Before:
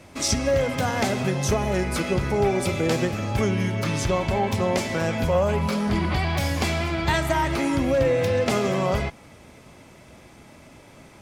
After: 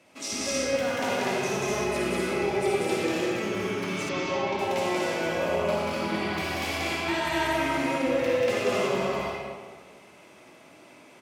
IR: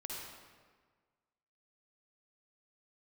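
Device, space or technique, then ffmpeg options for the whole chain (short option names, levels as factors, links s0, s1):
stadium PA: -filter_complex "[0:a]highpass=230,equalizer=f=2700:t=o:w=0.48:g=5,aecho=1:1:186.6|244.9:0.891|0.708[s0];[1:a]atrim=start_sample=2205[s1];[s0][s1]afir=irnorm=-1:irlink=0,asettb=1/sr,asplit=3[s2][s3][s4];[s2]atrim=end=4.094[s5];[s3]atrim=start=4.09:end=4.59,asetpts=PTS-STARTPTS,afade=t=in:d=0.004:c=qsin,afade=t=out:st=0.496:d=0.004:c=qsin,lowpass=f=5600:w=0.5412,lowpass=f=5600:w=1.3066[s6];[s4]atrim=start=4.586[s7];[s5][s6]acrossfade=d=0.004:c1=hsin:c2=qsin[s8];[s8][s7]acrossfade=d=0.004:c1=qsin:c2=hsin,volume=0.531"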